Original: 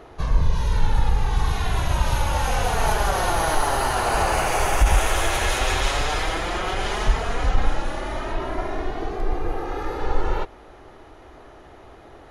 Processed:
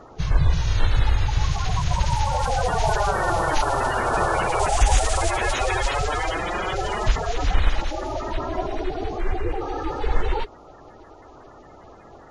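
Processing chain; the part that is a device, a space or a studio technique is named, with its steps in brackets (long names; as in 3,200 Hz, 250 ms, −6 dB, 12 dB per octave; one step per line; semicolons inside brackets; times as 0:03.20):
clip after many re-uploads (low-pass filter 8,200 Hz 24 dB per octave; spectral magnitudes quantised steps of 30 dB)
0:04.59–0:05.31: parametric band 7,900 Hz +5.5 dB 0.72 octaves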